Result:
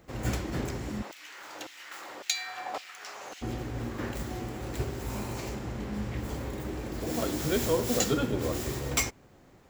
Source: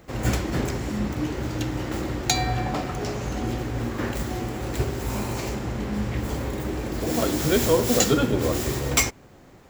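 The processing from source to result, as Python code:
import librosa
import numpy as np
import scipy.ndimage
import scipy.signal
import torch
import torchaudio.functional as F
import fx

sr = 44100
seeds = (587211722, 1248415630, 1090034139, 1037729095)

y = fx.filter_lfo_highpass(x, sr, shape='saw_down', hz=1.8, low_hz=560.0, high_hz=3000.0, q=1.3, at=(1.01, 3.41), fade=0.02)
y = F.gain(torch.from_numpy(y), -7.0).numpy()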